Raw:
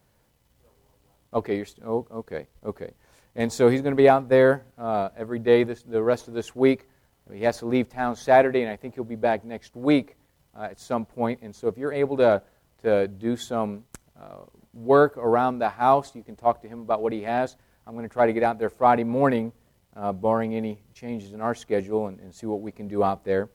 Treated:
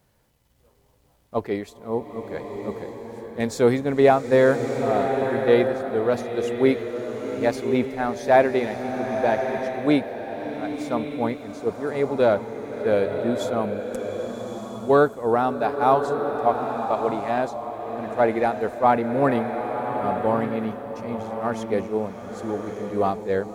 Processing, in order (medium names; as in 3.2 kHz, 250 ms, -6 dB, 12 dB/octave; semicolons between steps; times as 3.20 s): swelling reverb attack 1180 ms, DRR 5 dB